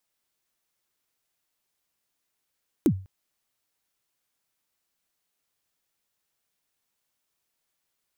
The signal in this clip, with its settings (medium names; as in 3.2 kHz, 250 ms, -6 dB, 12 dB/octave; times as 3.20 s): kick drum length 0.20 s, from 370 Hz, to 95 Hz, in 71 ms, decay 0.36 s, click on, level -13 dB